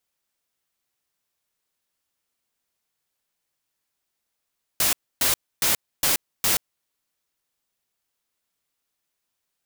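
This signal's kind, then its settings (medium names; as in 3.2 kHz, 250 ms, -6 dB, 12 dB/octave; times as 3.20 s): noise bursts white, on 0.13 s, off 0.28 s, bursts 5, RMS -20.5 dBFS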